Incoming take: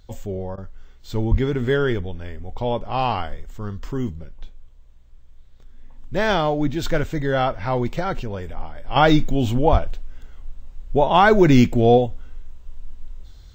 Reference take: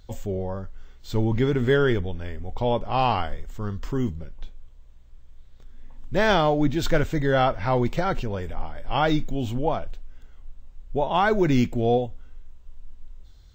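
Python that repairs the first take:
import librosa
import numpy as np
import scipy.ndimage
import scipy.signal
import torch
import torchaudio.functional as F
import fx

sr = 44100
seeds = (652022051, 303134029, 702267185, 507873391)

y = fx.highpass(x, sr, hz=140.0, slope=24, at=(1.3, 1.42), fade=0.02)
y = fx.highpass(y, sr, hz=140.0, slope=24, at=(9.71, 9.83), fade=0.02)
y = fx.fix_interpolate(y, sr, at_s=(0.56,), length_ms=16.0)
y = fx.fix_level(y, sr, at_s=8.96, step_db=-7.0)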